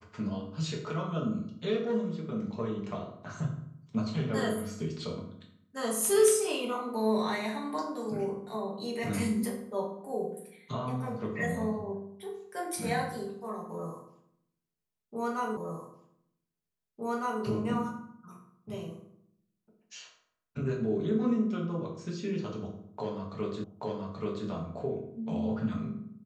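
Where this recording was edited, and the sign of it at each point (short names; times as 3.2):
15.57 repeat of the last 1.86 s
23.64 repeat of the last 0.83 s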